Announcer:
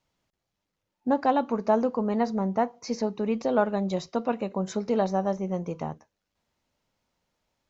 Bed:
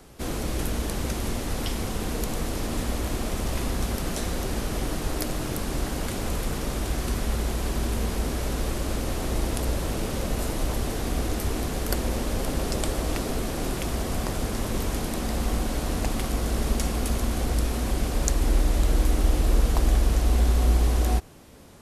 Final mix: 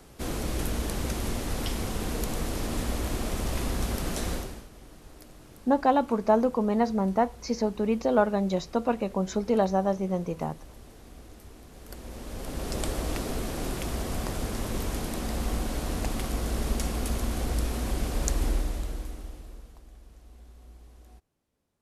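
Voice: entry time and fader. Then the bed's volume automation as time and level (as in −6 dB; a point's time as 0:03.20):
4.60 s, +1.0 dB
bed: 0:04.34 −2 dB
0:04.70 −21 dB
0:11.66 −21 dB
0:12.81 −3.5 dB
0:18.44 −3.5 dB
0:19.84 −30 dB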